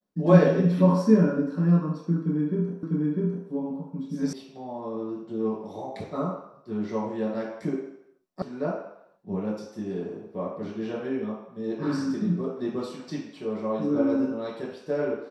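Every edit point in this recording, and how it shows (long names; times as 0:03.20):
0:02.83: the same again, the last 0.65 s
0:04.33: cut off before it has died away
0:08.42: cut off before it has died away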